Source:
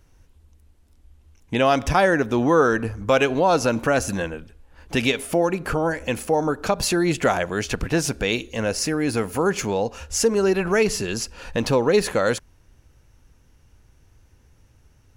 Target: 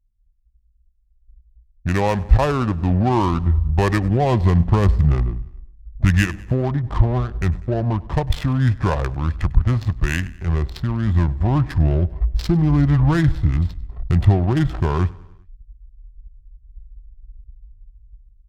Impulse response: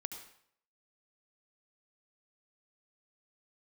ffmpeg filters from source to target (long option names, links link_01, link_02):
-filter_complex "[0:a]highpass=48,anlmdn=1,aecho=1:1:0.9:0.34,asubboost=boost=7.5:cutoff=120,acrossover=split=440|2400[link_01][link_02][link_03];[link_01]dynaudnorm=framelen=430:gausssize=5:maxgain=8.5dB[link_04];[link_04][link_02][link_03]amix=inputs=3:normalize=0,asetrate=40440,aresample=44100,atempo=1.09051,adynamicsmooth=sensitivity=2:basefreq=500,asplit=2[link_05][link_06];[link_06]aecho=0:1:81|162|243|324:0.0794|0.0453|0.0258|0.0147[link_07];[link_05][link_07]amix=inputs=2:normalize=0,asetrate=36162,aresample=44100,volume=-1dB"